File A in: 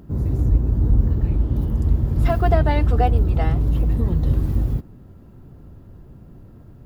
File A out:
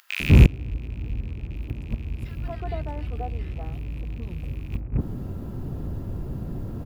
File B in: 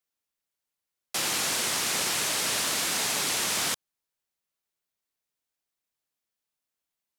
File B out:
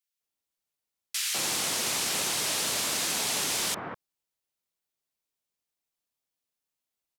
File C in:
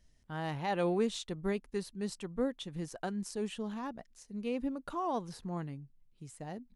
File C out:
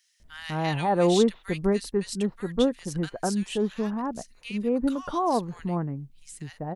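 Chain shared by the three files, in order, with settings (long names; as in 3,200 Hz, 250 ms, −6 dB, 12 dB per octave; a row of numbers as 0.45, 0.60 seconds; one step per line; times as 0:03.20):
loose part that buzzes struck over −22 dBFS, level −23 dBFS
multiband delay without the direct sound highs, lows 200 ms, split 1,600 Hz
gate with flip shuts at −13 dBFS, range −25 dB
loudness normalisation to −27 LKFS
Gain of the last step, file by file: +11.5, −1.0, +10.0 decibels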